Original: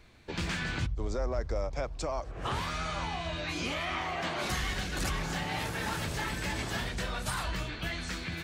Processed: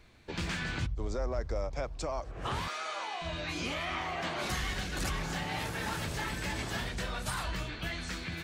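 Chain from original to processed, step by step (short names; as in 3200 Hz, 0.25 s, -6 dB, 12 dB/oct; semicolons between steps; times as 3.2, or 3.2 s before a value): 2.68–3.22 HPF 390 Hz 24 dB/oct; gain -1.5 dB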